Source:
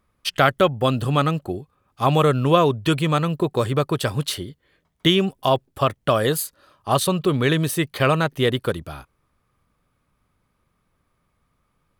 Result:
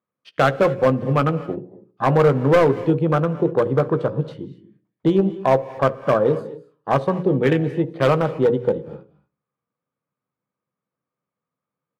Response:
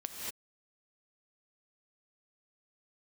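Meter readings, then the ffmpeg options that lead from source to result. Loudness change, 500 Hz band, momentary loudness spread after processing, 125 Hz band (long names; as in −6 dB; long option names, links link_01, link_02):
+1.5 dB, +3.5 dB, 13 LU, 0.0 dB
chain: -filter_complex "[0:a]aemphasis=mode=reproduction:type=75fm,afwtdn=0.0631,highpass=frequency=130:width=0.5412,highpass=frequency=130:width=1.3066,equalizer=frequency=500:width=7.9:gain=8,bandreject=frequency=60:width_type=h:width=6,bandreject=frequency=120:width_type=h:width=6,bandreject=frequency=180:width_type=h:width=6,bandreject=frequency=240:width_type=h:width=6,bandreject=frequency=300:width_type=h:width=6,bandreject=frequency=360:width_type=h:width=6,bandreject=frequency=420:width_type=h:width=6,bandreject=frequency=480:width_type=h:width=6,bandreject=frequency=540:width_type=h:width=6,adynamicsmooth=sensitivity=7:basefreq=5900,volume=11dB,asoftclip=hard,volume=-11dB,asplit=2[link_01][link_02];[link_02]adelay=15,volume=-13dB[link_03];[link_01][link_03]amix=inputs=2:normalize=0,asplit=2[link_04][link_05];[link_05]adelay=66,lowpass=frequency=850:poles=1,volume=-19dB,asplit=2[link_06][link_07];[link_07]adelay=66,lowpass=frequency=850:poles=1,volume=0.51,asplit=2[link_08][link_09];[link_09]adelay=66,lowpass=frequency=850:poles=1,volume=0.51,asplit=2[link_10][link_11];[link_11]adelay=66,lowpass=frequency=850:poles=1,volume=0.51[link_12];[link_04][link_06][link_08][link_10][link_12]amix=inputs=5:normalize=0,asplit=2[link_13][link_14];[1:a]atrim=start_sample=2205,asetrate=42336,aresample=44100[link_15];[link_14][link_15]afir=irnorm=-1:irlink=0,volume=-13.5dB[link_16];[link_13][link_16]amix=inputs=2:normalize=0"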